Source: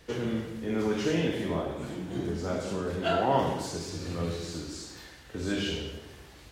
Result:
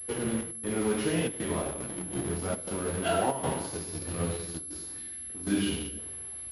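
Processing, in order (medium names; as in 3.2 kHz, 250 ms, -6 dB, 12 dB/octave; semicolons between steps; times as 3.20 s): 4.98–5.99 s: graphic EQ 125/250/500/1000 Hz -4/+9/-5/-8 dB; in parallel at -7 dB: bit crusher 5-bit; on the sum: trance gate "xxxx.xxxxx.xxxxx" 118 bpm -12 dB; flange 1.6 Hz, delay 9 ms, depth 5.8 ms, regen -39%; class-D stage that switches slowly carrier 11 kHz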